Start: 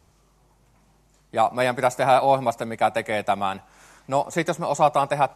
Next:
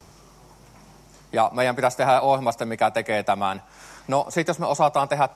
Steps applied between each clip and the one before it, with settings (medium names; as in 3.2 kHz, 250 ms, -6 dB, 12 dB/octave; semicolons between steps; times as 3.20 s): gate with hold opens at -54 dBFS; peaking EQ 5.5 kHz +8 dB 0.2 oct; three bands compressed up and down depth 40%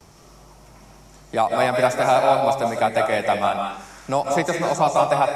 reverberation RT60 0.50 s, pre-delay 115 ms, DRR 1.5 dB